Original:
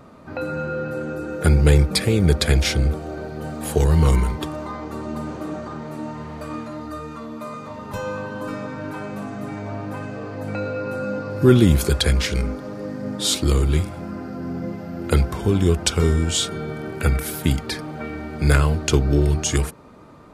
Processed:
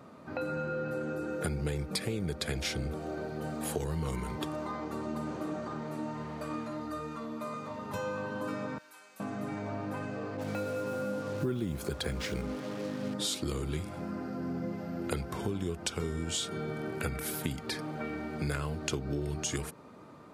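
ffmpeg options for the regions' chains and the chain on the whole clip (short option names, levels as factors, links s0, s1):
-filter_complex "[0:a]asettb=1/sr,asplit=3[s0][s1][s2];[s0]atrim=end=8.784[s3];[s1]atrim=start=8.78:end=9.2,asetpts=PTS-STARTPTS,afade=t=in:d=0.004:c=qsin,afade=t=out:st=0.416:d=0.004:c=qsin,highpass=f=230:p=1,aderivative[s4];[s2]atrim=start=9.196[s5];[s3][s4]acrossfade=d=0.004:c1=hsin:c2=qsin[s6];[s6][s5]acrossfade=d=0.004:c1=qsin:c2=hsin,asettb=1/sr,asplit=3[s7][s8][s9];[s7]atrim=end=10.374[s10];[s8]atrim=start=10.37:end=13.14,asetpts=PTS-STARTPTS,afade=t=in:d=0.004:c=qsin,afade=t=out:st=2.766:d=0.004:c=qsin,acrusher=bits=5:mix=0:aa=0.5,adynamicequalizer=threshold=0.0141:dfrequency=1800:dqfactor=0.7:tfrequency=1800:tqfactor=0.7:attack=5:release=100:ratio=0.375:range=3.5:mode=cutabove:tftype=highshelf[s11];[s9]atrim=start=13.136[s12];[s10][s11]acrossfade=d=0.004:c1=hsin:c2=qsin[s13];[s13][s12]acrossfade=d=0.004:c1=qsin:c2=hsin,highpass=110,acompressor=threshold=0.0562:ratio=5,volume=0.531"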